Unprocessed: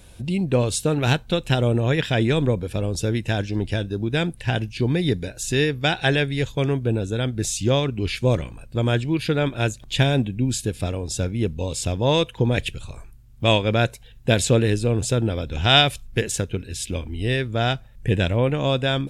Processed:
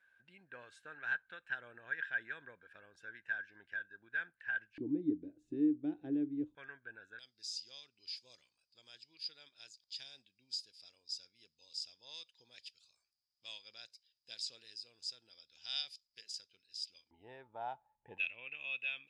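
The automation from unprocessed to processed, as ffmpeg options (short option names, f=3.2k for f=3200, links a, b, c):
-af "asetnsamples=n=441:p=0,asendcmd='4.78 bandpass f 300;6.55 bandpass f 1600;7.19 bandpass f 4900;17.11 bandpass f 860;18.18 bandpass f 2600',bandpass=f=1.6k:t=q:w=20:csg=0"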